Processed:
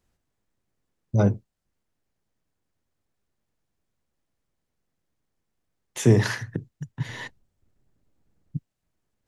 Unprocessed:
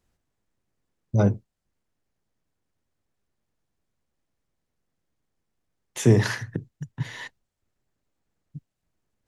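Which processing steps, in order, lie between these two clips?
7.09–8.57 low shelf 480 Hz +11.5 dB

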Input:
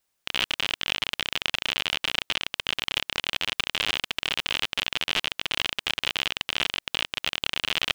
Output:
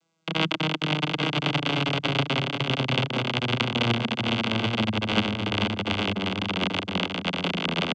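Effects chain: vocoder on a gliding note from E3, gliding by -12 st; bell 210 Hz +8.5 dB 0.37 oct; notch 1800 Hz, Q 5.5; on a send: echo 0.836 s -5.5 dB; on the sum: gain +2.5 dB

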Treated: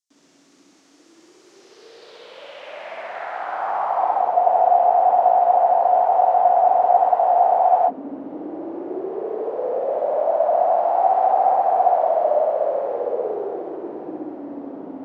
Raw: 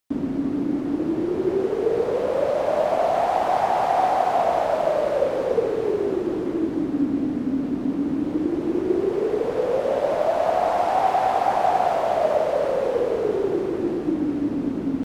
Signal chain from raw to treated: flutter echo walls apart 10.9 m, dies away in 1.3 s; band-pass sweep 6400 Hz -> 690 Hz, 1.51–4.47; spectral freeze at 4.36, 3.52 s; gain +1 dB

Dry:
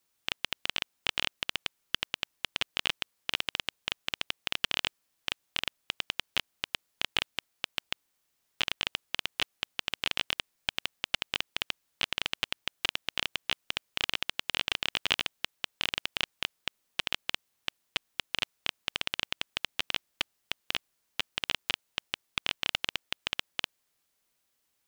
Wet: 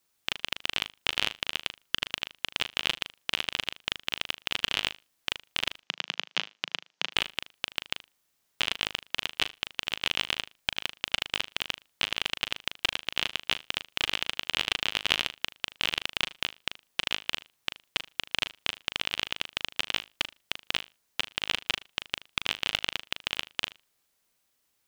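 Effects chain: 5.79–7.12 elliptic band-pass 170–6200 Hz; flutter echo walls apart 6.6 m, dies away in 0.23 s; gain +2 dB

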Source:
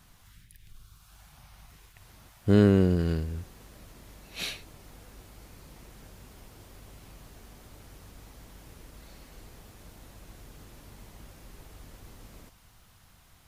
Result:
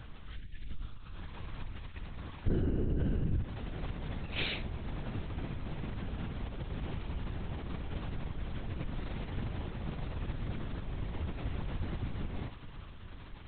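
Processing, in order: low shelf 270 Hz +7.5 dB; compressor 8:1, threshold -34 dBFS, peak gain reduction 23 dB; LPC vocoder at 8 kHz whisper; gain +6 dB

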